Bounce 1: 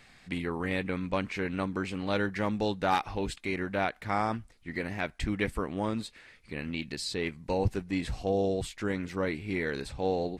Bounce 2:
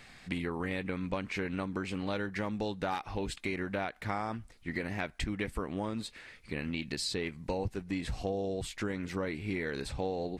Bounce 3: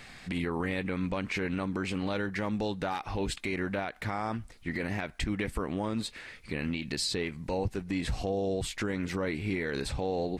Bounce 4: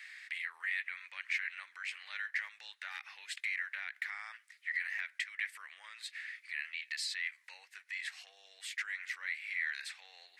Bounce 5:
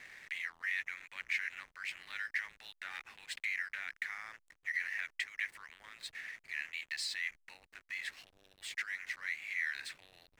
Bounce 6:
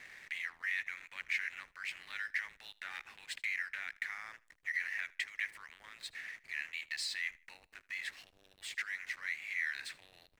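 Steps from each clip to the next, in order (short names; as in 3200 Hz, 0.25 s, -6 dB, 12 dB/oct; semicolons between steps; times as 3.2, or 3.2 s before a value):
compressor, threshold -34 dBFS, peak gain reduction 12 dB; gain +3 dB
limiter -27 dBFS, peak gain reduction 7.5 dB; gain +5 dB
ladder high-pass 1700 Hz, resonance 65%; gain +3.5 dB
backlash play -49 dBFS
feedback echo 78 ms, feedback 30%, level -22.5 dB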